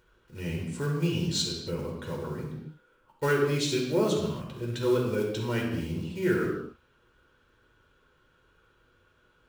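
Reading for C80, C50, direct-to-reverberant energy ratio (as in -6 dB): 5.5 dB, 2.5 dB, -2.0 dB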